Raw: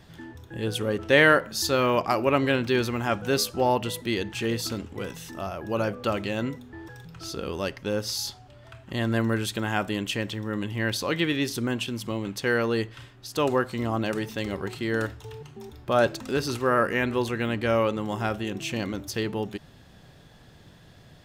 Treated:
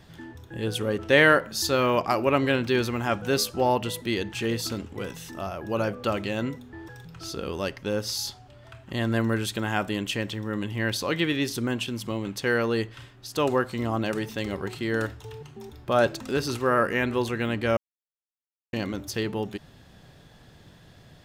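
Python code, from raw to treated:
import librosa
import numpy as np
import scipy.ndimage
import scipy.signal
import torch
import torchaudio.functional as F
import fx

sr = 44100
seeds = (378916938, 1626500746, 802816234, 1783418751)

y = fx.edit(x, sr, fx.silence(start_s=17.77, length_s=0.96), tone=tone)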